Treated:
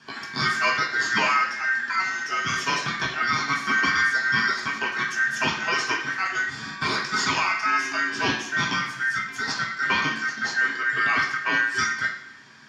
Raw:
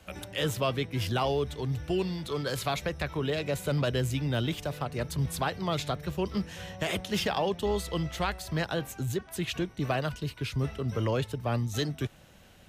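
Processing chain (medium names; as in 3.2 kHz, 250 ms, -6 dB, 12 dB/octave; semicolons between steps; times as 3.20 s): low-pass 5.2 kHz 12 dB/octave; ring modulator 1.7 kHz; high-pass 130 Hz 12 dB/octave; reverberation RT60 0.70 s, pre-delay 3 ms, DRR -1 dB; trim -1 dB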